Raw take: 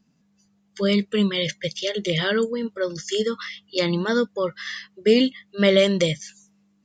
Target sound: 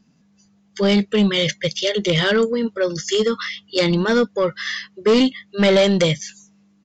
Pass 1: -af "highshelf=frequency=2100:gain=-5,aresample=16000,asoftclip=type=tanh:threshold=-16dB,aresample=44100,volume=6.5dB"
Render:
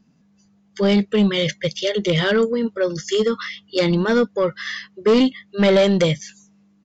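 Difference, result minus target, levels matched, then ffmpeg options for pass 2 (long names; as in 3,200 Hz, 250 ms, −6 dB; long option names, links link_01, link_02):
4,000 Hz band −3.0 dB
-af "aresample=16000,asoftclip=type=tanh:threshold=-16dB,aresample=44100,volume=6.5dB"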